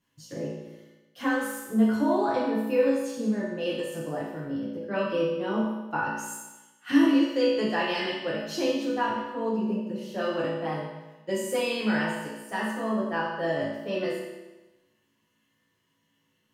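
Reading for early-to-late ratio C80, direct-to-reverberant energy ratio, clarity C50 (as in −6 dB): 3.0 dB, −8.0 dB, 0.0 dB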